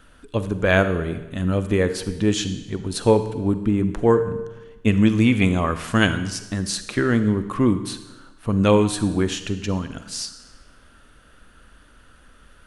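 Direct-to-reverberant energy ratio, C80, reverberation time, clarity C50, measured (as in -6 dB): 10.5 dB, 13.0 dB, 1.1 s, 11.5 dB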